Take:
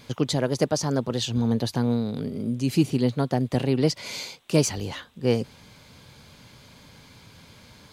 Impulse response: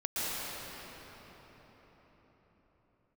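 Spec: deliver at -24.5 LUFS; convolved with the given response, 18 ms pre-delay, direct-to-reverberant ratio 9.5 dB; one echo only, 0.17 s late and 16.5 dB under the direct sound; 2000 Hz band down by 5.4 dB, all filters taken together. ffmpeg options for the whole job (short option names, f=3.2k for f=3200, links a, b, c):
-filter_complex "[0:a]equalizer=f=2k:t=o:g=-7,aecho=1:1:170:0.15,asplit=2[a][b];[1:a]atrim=start_sample=2205,adelay=18[c];[b][c]afir=irnorm=-1:irlink=0,volume=-18dB[d];[a][d]amix=inputs=2:normalize=0,volume=0.5dB"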